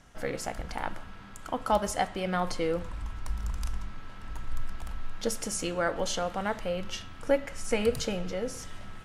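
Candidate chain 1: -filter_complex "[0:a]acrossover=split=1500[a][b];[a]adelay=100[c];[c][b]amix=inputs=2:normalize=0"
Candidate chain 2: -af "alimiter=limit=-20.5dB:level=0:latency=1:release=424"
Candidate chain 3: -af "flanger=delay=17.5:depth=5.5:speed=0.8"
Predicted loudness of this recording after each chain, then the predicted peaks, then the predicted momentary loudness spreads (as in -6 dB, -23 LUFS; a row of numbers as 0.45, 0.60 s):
-33.0, -35.5, -35.0 LUFS; -13.0, -20.5, -14.5 dBFS; 14, 11, 14 LU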